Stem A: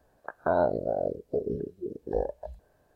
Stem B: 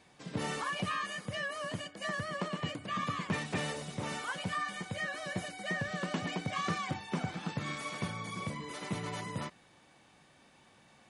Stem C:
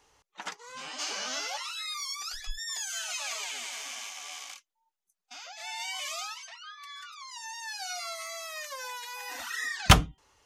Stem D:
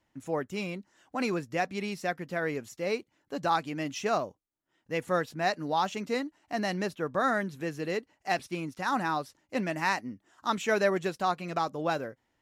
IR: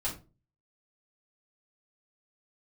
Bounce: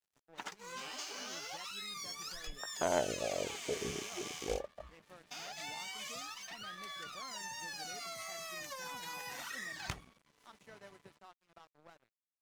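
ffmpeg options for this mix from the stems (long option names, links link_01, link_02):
-filter_complex "[0:a]aeval=exprs='0.251*(cos(1*acos(clip(val(0)/0.251,-1,1)))-cos(1*PI/2))+0.0631*(cos(3*acos(clip(val(0)/0.251,-1,1)))-cos(3*PI/2))+0.02*(cos(5*acos(clip(val(0)/0.251,-1,1)))-cos(5*PI/2))':channel_layout=same,adelay=2350,volume=-4dB[link_01];[1:a]highpass=58,lowshelf=frequency=280:gain=-3.5,alimiter=level_in=9.5dB:limit=-24dB:level=0:latency=1:release=64,volume=-9.5dB,adelay=1700,volume=-15.5dB[link_02];[2:a]equalizer=frequency=400:width=3.9:gain=7,acompressor=threshold=-41dB:ratio=12,volume=1.5dB[link_03];[3:a]acompressor=threshold=-43dB:ratio=1.5,volume=-18.5dB[link_04];[link_01][link_02][link_03][link_04]amix=inputs=4:normalize=0,aeval=exprs='sgn(val(0))*max(abs(val(0))-0.00168,0)':channel_layout=same"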